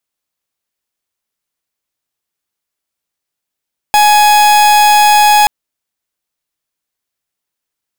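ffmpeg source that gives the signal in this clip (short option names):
-f lavfi -i "aevalsrc='0.447*(2*lt(mod(838*t,1),0.43)-1)':d=1.53:s=44100"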